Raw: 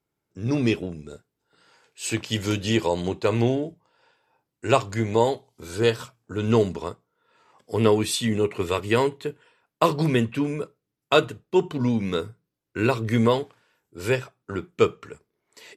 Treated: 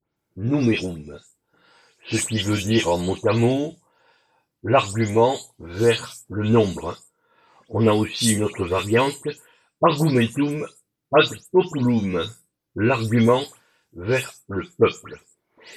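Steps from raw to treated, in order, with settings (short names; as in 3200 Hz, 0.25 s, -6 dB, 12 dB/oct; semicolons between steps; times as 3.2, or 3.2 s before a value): spectral delay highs late, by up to 0.164 s; dynamic EQ 8800 Hz, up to +5 dB, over -58 dBFS, Q 3.9; gain +3.5 dB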